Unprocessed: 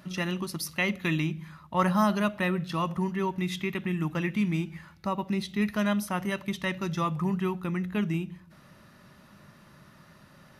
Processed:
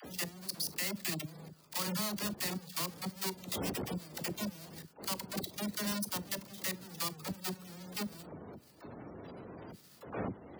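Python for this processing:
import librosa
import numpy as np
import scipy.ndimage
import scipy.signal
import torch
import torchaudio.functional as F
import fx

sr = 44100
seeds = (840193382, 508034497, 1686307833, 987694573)

y = fx.halfwave_hold(x, sr)
y = fx.dmg_wind(y, sr, seeds[0], corner_hz=410.0, level_db=-29.0)
y = librosa.effects.preemphasis(y, coef=0.8, zi=[0.0])
y = fx.doubler(y, sr, ms=39.0, db=-11.5)
y = fx.spec_gate(y, sr, threshold_db=-25, keep='strong')
y = fx.peak_eq(y, sr, hz=4600.0, db=7.5, octaves=0.3)
y = fx.level_steps(y, sr, step_db=17)
y = scipy.signal.sosfilt(scipy.signal.butter(2, 89.0, 'highpass', fs=sr, output='sos'), y)
y = fx.dispersion(y, sr, late='lows', ms=49.0, hz=480.0)
y = fx.band_squash(y, sr, depth_pct=40)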